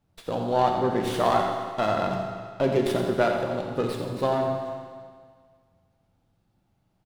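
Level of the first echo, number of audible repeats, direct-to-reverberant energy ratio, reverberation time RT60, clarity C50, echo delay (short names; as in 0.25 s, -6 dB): -9.5 dB, 1, 1.0 dB, 1.8 s, 2.5 dB, 86 ms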